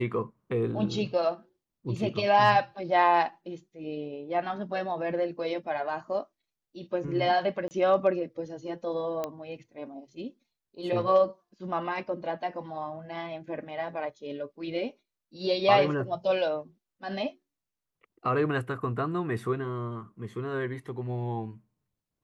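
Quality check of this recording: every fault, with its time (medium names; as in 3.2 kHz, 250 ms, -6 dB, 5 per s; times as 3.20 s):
7.68–7.71 s: dropout 29 ms
9.24 s: pop -18 dBFS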